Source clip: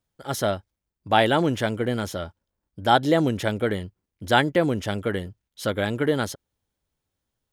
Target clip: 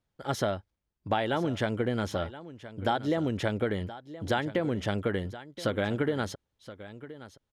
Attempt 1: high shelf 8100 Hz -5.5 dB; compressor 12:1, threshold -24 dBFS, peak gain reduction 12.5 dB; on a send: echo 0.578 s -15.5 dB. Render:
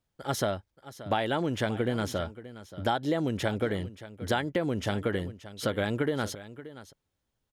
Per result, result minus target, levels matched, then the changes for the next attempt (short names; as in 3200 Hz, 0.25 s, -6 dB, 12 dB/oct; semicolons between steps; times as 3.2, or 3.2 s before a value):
echo 0.445 s early; 8000 Hz band +4.5 dB
change: echo 1.023 s -15.5 dB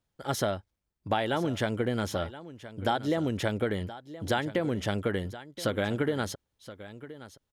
8000 Hz band +4.5 dB
change: high shelf 8100 Hz -16.5 dB